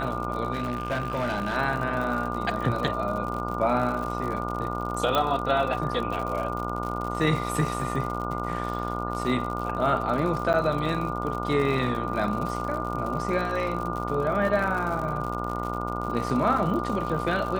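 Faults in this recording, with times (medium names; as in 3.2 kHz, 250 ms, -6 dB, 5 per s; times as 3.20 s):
buzz 60 Hz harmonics 24 -32 dBFS
crackle 76 per s -31 dBFS
whine 1.2 kHz -33 dBFS
0.53–1.57 s: clipped -23 dBFS
5.15 s: pop -11 dBFS
10.53–10.54 s: dropout 8.4 ms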